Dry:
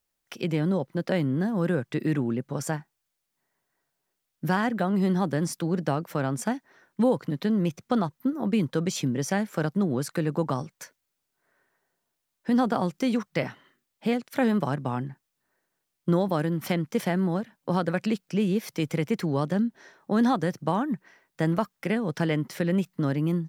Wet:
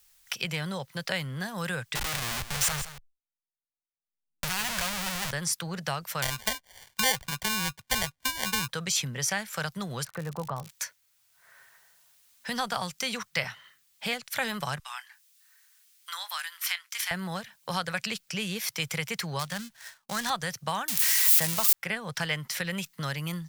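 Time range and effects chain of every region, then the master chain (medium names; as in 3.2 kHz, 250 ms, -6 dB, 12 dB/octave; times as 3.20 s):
1.95–5.31 s: Schmitt trigger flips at -41 dBFS + delay 165 ms -14 dB
6.22–8.68 s: low-pass 2.8 kHz + sample-rate reducer 1.3 kHz + tape noise reduction on one side only encoder only
10.03–10.69 s: low-pass 1 kHz + crackle 85 per s -40 dBFS
14.79–17.11 s: Bessel high-pass 1.6 kHz, order 6 + doubling 23 ms -13 dB
19.39–20.30 s: dead-time distortion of 0.085 ms + expander -51 dBFS + peaking EQ 390 Hz -8.5 dB 1.1 oct
20.88–21.73 s: zero-crossing glitches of -17 dBFS + peaking EQ 1.5 kHz -4.5 dB 0.62 oct
whole clip: amplifier tone stack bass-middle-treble 10-0-10; three bands compressed up and down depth 40%; trim +8.5 dB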